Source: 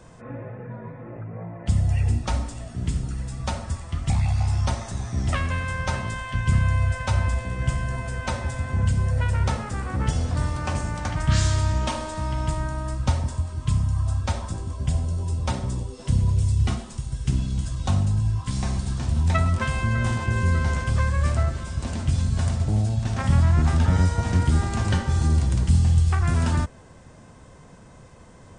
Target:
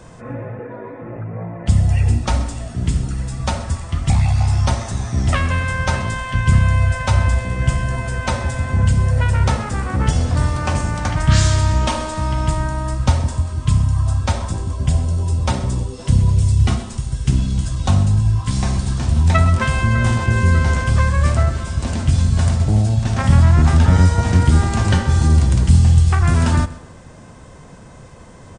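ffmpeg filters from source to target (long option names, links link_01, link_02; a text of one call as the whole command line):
ffmpeg -i in.wav -filter_complex "[0:a]asettb=1/sr,asplit=3[link_01][link_02][link_03];[link_01]atrim=end=0.594[link_04];[link_02]atrim=start=0.59:end=1.02,asetpts=PTS-STARTPTS,afade=type=in:duration=0.004:curve=qsin,afade=type=out:start_time=0.426:duration=0.004:curve=qsin,lowshelf=frequency=230:width_type=q:width=3:gain=-9[link_05];[link_03]atrim=start=1.016[link_06];[link_04][link_05]acrossfade=duration=0.004:curve1=hsin:curve2=qsin[link_07];[link_07][link_06]acrossfade=duration=0.004:curve1=qsin:curve2=hsin,aecho=1:1:129|258|387:0.126|0.0453|0.0163,volume=7dB" out.wav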